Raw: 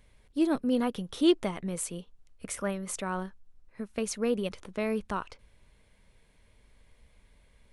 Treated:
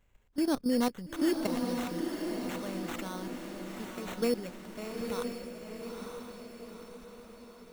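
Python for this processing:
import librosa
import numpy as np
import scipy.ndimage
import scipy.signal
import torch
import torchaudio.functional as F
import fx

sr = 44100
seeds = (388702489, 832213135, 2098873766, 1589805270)

y = fx.level_steps(x, sr, step_db=14)
y = fx.sample_hold(y, sr, seeds[0], rate_hz=4900.0, jitter_pct=0)
y = fx.echo_diffused(y, sr, ms=924, feedback_pct=52, wet_db=-4)
y = y * 10.0 ** (1.5 / 20.0)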